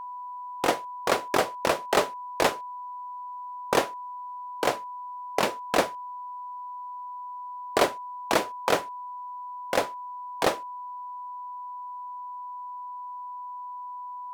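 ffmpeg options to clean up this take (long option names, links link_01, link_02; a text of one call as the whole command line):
ffmpeg -i in.wav -af "bandreject=frequency=990:width=30" out.wav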